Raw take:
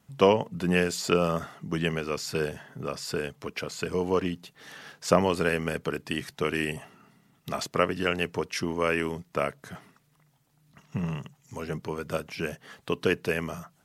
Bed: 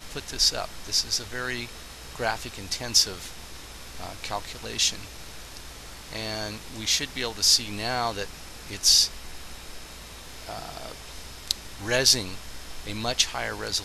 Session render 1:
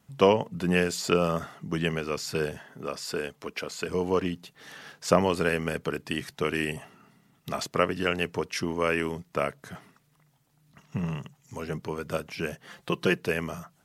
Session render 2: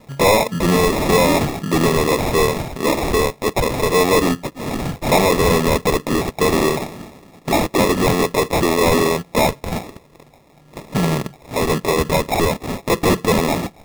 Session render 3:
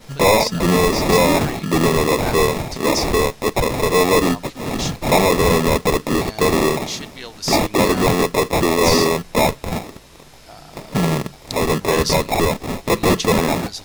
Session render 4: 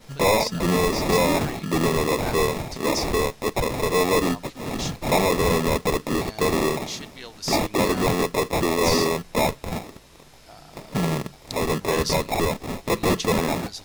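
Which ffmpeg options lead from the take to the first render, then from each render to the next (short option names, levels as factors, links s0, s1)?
-filter_complex "[0:a]asettb=1/sr,asplit=3[s0][s1][s2];[s0]atrim=end=2.594[s3];[s1]atrim=start=2.59:end=3.89,asetpts=PTS-STARTPTS,afade=t=in:d=0.004:c=qsin,afade=t=out:st=1.296:d=0.004:c=qsin,equalizer=f=110:w=1.5:g=-11.5[s4];[s2]atrim=start=3.886[s5];[s3][s4]acrossfade=d=0.004:c1=hsin:c2=qsin[s6];[s6][s5]acrossfade=d=0.004:c1=qsin:c2=hsin,asettb=1/sr,asplit=3[s7][s8][s9];[s7]atrim=end=12.664[s10];[s8]atrim=start=12.66:end=13.18,asetpts=PTS-STARTPTS,afade=t=in:d=0.004:c=qsin,afade=t=out:st=0.516:d=0.004:c=qsin,aecho=1:1:5.7:0.65,atrim=end_sample=22932[s11];[s9]atrim=start=13.176[s12];[s10][s11]acrossfade=d=0.004:c1=hsin:c2=qsin[s13];[s13][s12]acrossfade=d=0.004:c1=qsin:c2=hsin"
-filter_complex "[0:a]asplit=2[s0][s1];[s1]highpass=f=720:p=1,volume=39.8,asoftclip=type=tanh:threshold=0.531[s2];[s0][s2]amix=inputs=2:normalize=0,lowpass=f=3400:p=1,volume=0.501,acrusher=samples=29:mix=1:aa=0.000001"
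-filter_complex "[1:a]volume=0.596[s0];[0:a][s0]amix=inputs=2:normalize=0"
-af "volume=0.531"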